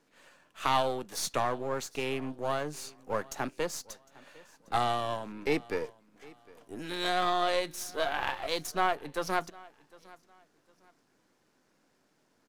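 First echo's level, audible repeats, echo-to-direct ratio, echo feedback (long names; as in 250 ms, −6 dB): −23.0 dB, 2, −22.5 dB, 29%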